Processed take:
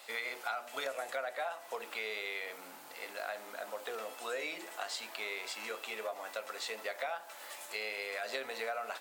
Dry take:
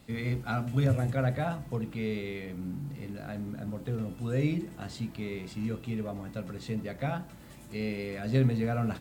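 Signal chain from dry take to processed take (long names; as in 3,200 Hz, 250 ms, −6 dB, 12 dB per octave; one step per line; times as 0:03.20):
high-pass filter 610 Hz 24 dB per octave
downward compressor 6 to 1, threshold −44 dBFS, peak gain reduction 13 dB
level +9 dB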